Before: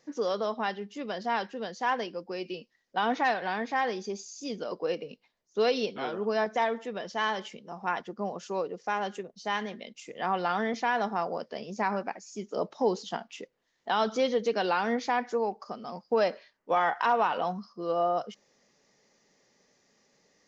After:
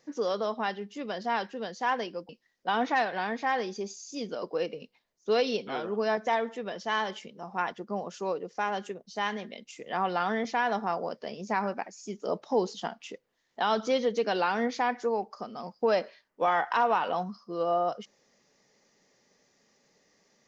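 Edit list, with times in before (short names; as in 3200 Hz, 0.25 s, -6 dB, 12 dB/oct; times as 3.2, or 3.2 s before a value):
2.29–2.58 cut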